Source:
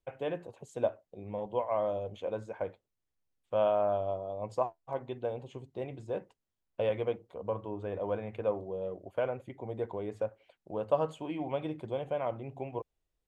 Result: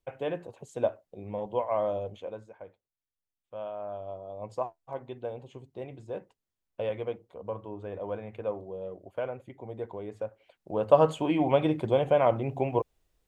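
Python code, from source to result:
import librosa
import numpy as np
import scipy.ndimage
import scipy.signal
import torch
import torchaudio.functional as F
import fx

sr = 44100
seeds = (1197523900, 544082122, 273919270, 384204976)

y = fx.gain(x, sr, db=fx.line((2.04, 2.5), (2.59, -10.5), (3.72, -10.5), (4.42, -1.5), (10.25, -1.5), (11.09, 10.5)))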